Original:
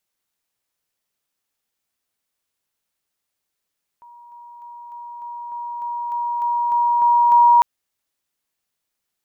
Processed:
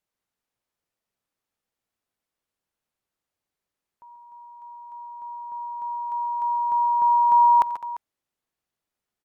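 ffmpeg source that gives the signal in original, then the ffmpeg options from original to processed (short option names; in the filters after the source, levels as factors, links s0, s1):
-f lavfi -i "aevalsrc='pow(10,(-41.5+3*floor(t/0.3))/20)*sin(2*PI*953*t)':d=3.6:s=44100"
-af "lowpass=f=1100:p=1,aemphasis=mode=production:type=cd,aecho=1:1:88|136|145|207|346:0.1|0.282|0.126|0.15|0.141"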